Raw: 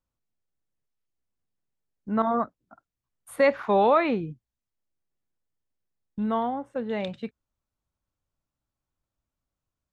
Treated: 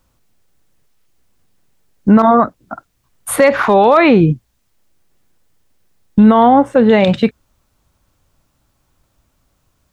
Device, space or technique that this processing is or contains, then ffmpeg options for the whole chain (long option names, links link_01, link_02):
loud club master: -af "acompressor=threshold=-29dB:ratio=1.5,asoftclip=type=hard:threshold=-16.5dB,alimiter=level_in=25.5dB:limit=-1dB:release=50:level=0:latency=1,volume=-1dB"